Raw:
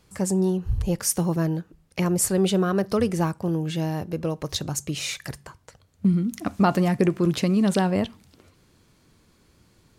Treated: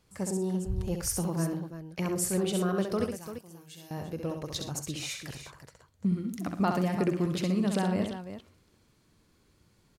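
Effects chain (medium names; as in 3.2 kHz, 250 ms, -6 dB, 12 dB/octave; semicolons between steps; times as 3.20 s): 3.04–3.91 s: pre-emphasis filter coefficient 0.9; multi-tap echo 66/109/122/342 ms -5.5/-16.5/-17.5/-10.5 dB; trim -8 dB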